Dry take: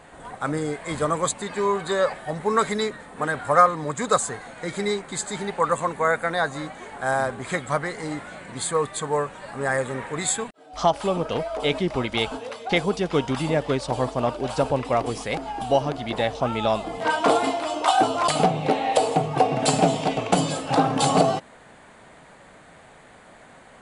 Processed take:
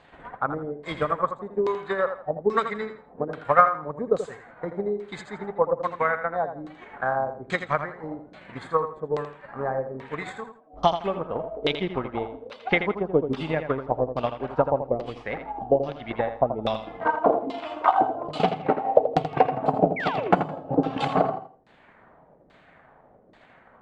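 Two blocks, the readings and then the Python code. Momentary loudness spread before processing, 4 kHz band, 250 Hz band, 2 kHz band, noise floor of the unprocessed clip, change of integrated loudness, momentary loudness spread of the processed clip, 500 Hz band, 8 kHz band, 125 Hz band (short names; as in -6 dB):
9 LU, -8.5 dB, -3.5 dB, -3.0 dB, -49 dBFS, -2.0 dB, 12 LU, -1.0 dB, under -25 dB, -5.0 dB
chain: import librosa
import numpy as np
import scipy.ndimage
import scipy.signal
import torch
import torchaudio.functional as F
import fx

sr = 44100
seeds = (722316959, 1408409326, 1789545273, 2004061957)

p1 = fx.transient(x, sr, attack_db=9, sustain_db=-5)
p2 = fx.filter_lfo_lowpass(p1, sr, shape='saw_down', hz=1.2, low_hz=360.0, high_hz=4300.0, q=1.7)
p3 = fx.spec_paint(p2, sr, seeds[0], shape='fall', start_s=19.96, length_s=0.36, low_hz=300.0, high_hz=2400.0, level_db=-22.0)
p4 = p3 + fx.echo_feedback(p3, sr, ms=82, feedback_pct=26, wet_db=-9.5, dry=0)
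y = p4 * librosa.db_to_amplitude(-8.0)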